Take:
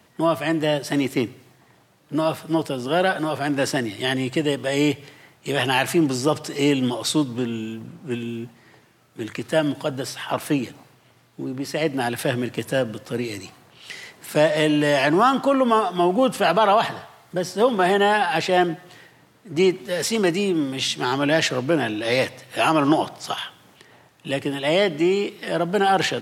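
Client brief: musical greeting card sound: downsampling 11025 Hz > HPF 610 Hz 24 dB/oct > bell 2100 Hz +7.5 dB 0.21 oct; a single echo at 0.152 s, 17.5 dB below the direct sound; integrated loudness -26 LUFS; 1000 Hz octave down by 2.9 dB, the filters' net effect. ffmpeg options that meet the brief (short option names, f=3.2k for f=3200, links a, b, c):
-af "equalizer=f=1k:t=o:g=-3.5,aecho=1:1:152:0.133,aresample=11025,aresample=44100,highpass=f=610:w=0.5412,highpass=f=610:w=1.3066,equalizer=f=2.1k:t=o:w=0.21:g=7.5"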